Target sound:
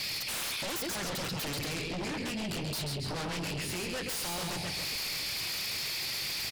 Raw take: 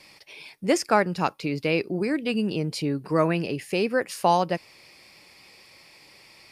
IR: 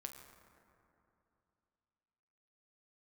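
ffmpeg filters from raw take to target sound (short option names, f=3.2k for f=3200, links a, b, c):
-filter_complex "[0:a]asoftclip=type=tanh:threshold=-18.5dB,acompressor=threshold=-37dB:ratio=6,equalizer=f=125:t=o:w=1:g=6,equalizer=f=250:t=o:w=1:g=-6,equalizer=f=500:t=o:w=1:g=-5,equalizer=f=1k:t=o:w=1:g=-9,equalizer=f=4k:t=o:w=1:g=9,asplit=7[a][b][c][d][e][f][g];[b]adelay=138,afreqshift=-43,volume=-14dB[h];[c]adelay=276,afreqshift=-86,volume=-18.4dB[i];[d]adelay=414,afreqshift=-129,volume=-22.9dB[j];[e]adelay=552,afreqshift=-172,volume=-27.3dB[k];[f]adelay=690,afreqshift=-215,volume=-31.7dB[l];[g]adelay=828,afreqshift=-258,volume=-36.2dB[m];[a][h][i][j][k][l][m]amix=inputs=7:normalize=0,alimiter=level_in=7.5dB:limit=-24dB:level=0:latency=1:release=427,volume=-7.5dB,asplit=3[n][o][p];[n]afade=t=out:st=1.65:d=0.02[q];[o]flanger=delay=19.5:depth=4.1:speed=1.4,afade=t=in:st=1.65:d=0.02,afade=t=out:st=3.92:d=0.02[r];[p]afade=t=in:st=3.92:d=0.02[s];[q][r][s]amix=inputs=3:normalize=0,aecho=1:1:134|268|402|536|670:0.473|0.194|0.0795|0.0326|0.0134,aeval=exprs='0.0251*sin(PI/2*4.47*val(0)/0.0251)':c=same"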